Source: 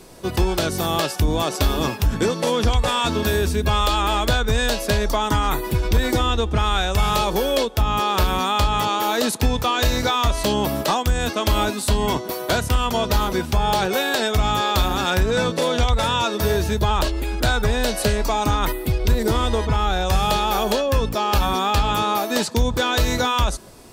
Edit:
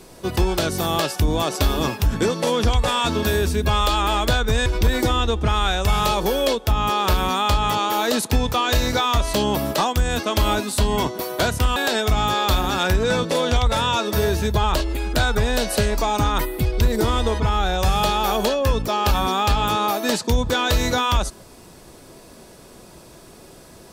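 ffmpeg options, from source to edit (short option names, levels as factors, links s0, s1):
-filter_complex "[0:a]asplit=3[s0][s1][s2];[s0]atrim=end=4.662[s3];[s1]atrim=start=5.758:end=12.862[s4];[s2]atrim=start=14.028[s5];[s3][s4]acrossfade=d=0.004:c1=hsin:c2=hsin[s6];[s6][s5]acrossfade=d=0.004:c1=hsin:c2=hsin"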